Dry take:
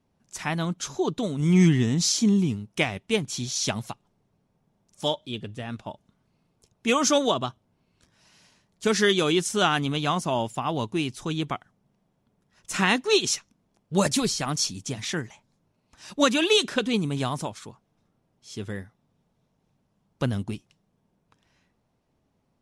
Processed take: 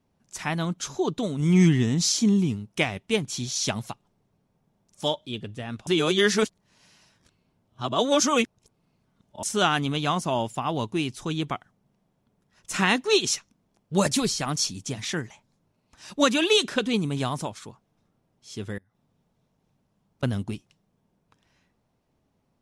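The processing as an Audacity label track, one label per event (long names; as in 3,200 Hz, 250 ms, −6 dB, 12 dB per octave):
5.870000	9.430000	reverse
18.780000	20.230000	downward compressor 12 to 1, threshold −60 dBFS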